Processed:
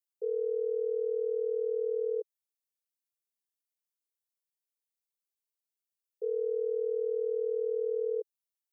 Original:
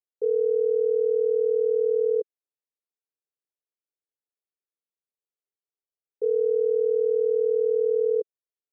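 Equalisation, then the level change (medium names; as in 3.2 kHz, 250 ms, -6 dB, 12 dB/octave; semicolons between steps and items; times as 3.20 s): tilt EQ +3 dB/octave; peaking EQ 350 Hz +3 dB 0.42 oct; static phaser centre 490 Hz, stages 4; -6.0 dB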